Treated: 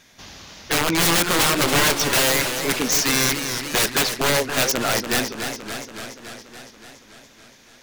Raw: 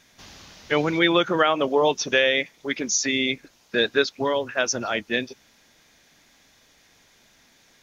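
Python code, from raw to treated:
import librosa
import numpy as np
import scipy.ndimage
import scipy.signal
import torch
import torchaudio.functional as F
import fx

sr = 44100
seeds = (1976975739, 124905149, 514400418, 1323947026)

y = (np.mod(10.0 ** (17.5 / 20.0) * x + 1.0, 2.0) - 1.0) / 10.0 ** (17.5 / 20.0)
y = fx.echo_warbled(y, sr, ms=284, feedback_pct=69, rate_hz=2.8, cents=118, wet_db=-8.0)
y = y * 10.0 ** (4.5 / 20.0)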